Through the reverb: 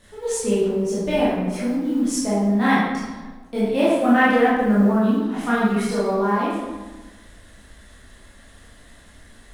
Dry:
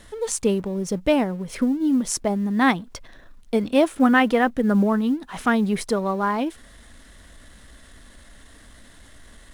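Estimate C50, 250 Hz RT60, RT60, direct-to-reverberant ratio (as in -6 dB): -2.0 dB, 1.4 s, 1.3 s, -10.0 dB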